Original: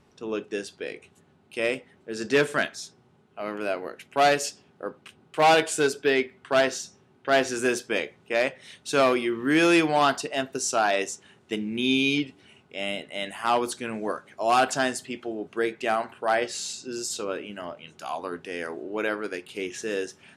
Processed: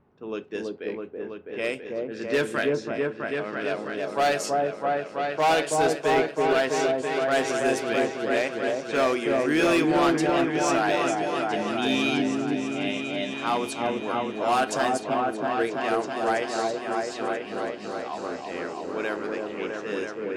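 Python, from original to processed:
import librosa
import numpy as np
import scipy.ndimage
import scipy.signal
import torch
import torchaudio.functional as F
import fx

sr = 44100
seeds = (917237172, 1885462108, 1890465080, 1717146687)

y = fx.env_lowpass(x, sr, base_hz=1400.0, full_db=-21.5)
y = fx.echo_opening(y, sr, ms=328, hz=750, octaves=1, feedback_pct=70, wet_db=0)
y = np.clip(y, -10.0 ** (-13.0 / 20.0), 10.0 ** (-13.0 / 20.0))
y = y * 10.0 ** (-2.5 / 20.0)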